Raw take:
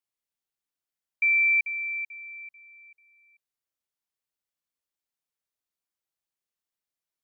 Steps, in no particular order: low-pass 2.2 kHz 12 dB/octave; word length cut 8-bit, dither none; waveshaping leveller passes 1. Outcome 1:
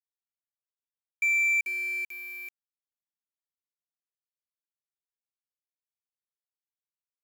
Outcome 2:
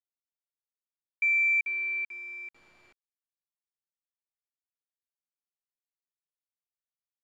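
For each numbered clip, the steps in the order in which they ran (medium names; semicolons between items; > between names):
low-pass > word length cut > waveshaping leveller; word length cut > waveshaping leveller > low-pass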